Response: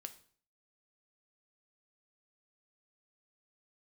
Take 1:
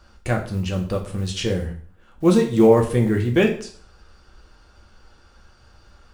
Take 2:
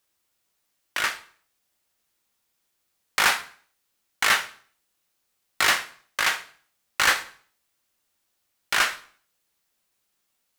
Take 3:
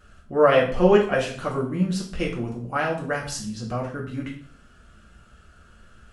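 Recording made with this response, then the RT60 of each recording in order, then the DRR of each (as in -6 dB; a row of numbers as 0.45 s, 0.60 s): 2; 0.50 s, 0.50 s, 0.50 s; 1.0 dB, 7.5 dB, -3.5 dB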